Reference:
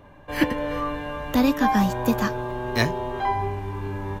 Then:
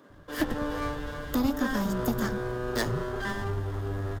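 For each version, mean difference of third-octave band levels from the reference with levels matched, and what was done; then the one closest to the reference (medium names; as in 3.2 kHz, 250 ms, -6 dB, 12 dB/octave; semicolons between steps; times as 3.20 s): 5.0 dB: comb filter that takes the minimum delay 0.58 ms; peaking EQ 2.3 kHz -9.5 dB 1.2 oct; compression, threshold -21 dBFS, peak gain reduction 6 dB; bands offset in time highs, lows 100 ms, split 190 Hz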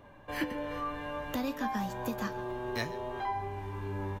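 3.0 dB: bass shelf 190 Hz -3.5 dB; compression 2:1, threshold -32 dBFS, peak gain reduction 9.5 dB; flange 0.58 Hz, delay 8.5 ms, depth 2.6 ms, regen +74%; on a send: delay 135 ms -19 dB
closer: second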